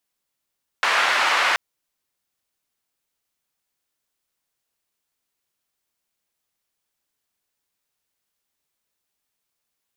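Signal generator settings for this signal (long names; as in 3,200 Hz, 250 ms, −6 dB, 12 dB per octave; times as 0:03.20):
band-limited noise 980–1,800 Hz, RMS −19.5 dBFS 0.73 s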